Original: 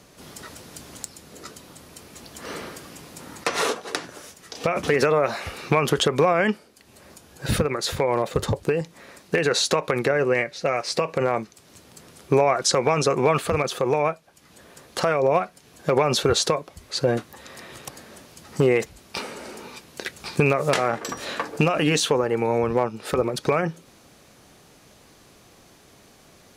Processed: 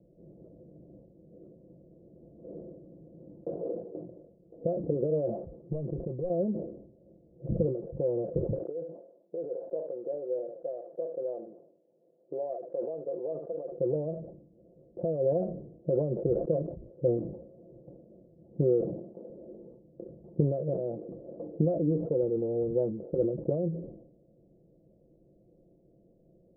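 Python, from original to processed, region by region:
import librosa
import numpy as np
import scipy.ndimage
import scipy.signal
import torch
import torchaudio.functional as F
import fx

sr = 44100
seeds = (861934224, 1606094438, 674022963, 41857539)

y = fx.chain(x, sr, fx.clip_hard(threshold_db=-17.0),
    fx.peak_eq(hz=460.0, db=-6.0, octaves=1.7), at=(5.43, 6.3))
y = fx.chain(y, sr, fx.highpass(hz=620.0, slope=12),
    fx.echo_single(ms=71, db=-16.5), at=(8.58, 13.72))
y = fx.chain(y, sr, fx.highpass(hz=110.0, slope=24),
    fx.low_shelf(hz=210.0, db=-8.0), at=(18.81, 19.3))
y = scipy.signal.sosfilt(scipy.signal.cheby1(5, 1.0, 600.0, 'lowpass', fs=sr, output='sos'), y)
y = y + 0.61 * np.pad(y, (int(5.9 * sr / 1000.0), 0))[:len(y)]
y = fx.sustainer(y, sr, db_per_s=72.0)
y = y * librosa.db_to_amplitude(-7.5)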